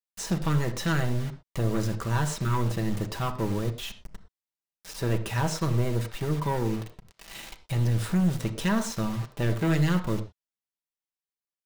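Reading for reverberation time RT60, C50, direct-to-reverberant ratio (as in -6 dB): not exponential, 12.5 dB, 4.0 dB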